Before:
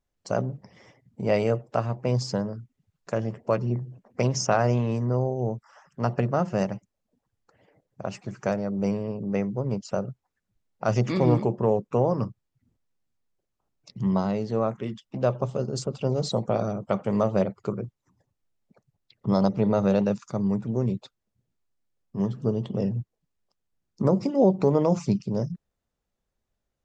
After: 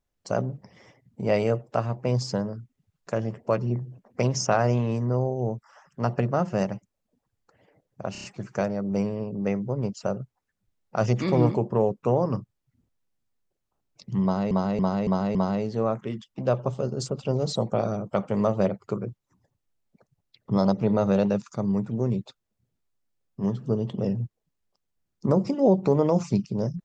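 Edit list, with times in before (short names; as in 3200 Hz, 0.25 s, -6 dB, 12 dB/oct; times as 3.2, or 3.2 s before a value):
8.12 stutter 0.03 s, 5 plays
14.11–14.39 loop, 5 plays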